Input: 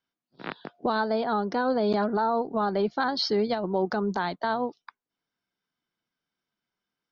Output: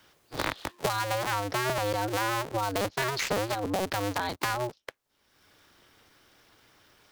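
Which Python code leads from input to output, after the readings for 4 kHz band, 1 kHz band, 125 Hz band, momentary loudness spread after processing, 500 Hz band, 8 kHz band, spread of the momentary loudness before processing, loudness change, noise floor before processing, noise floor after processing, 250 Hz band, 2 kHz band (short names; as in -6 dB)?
0.0 dB, -2.5 dB, +3.5 dB, 5 LU, -5.0 dB, n/a, 8 LU, -3.0 dB, under -85 dBFS, -72 dBFS, -7.5 dB, +2.5 dB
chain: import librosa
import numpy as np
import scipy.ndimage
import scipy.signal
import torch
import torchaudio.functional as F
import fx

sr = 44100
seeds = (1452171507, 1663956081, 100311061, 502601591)

y = fx.cycle_switch(x, sr, every=2, mode='inverted')
y = fx.band_squash(y, sr, depth_pct=100)
y = y * librosa.db_to_amplitude(-4.0)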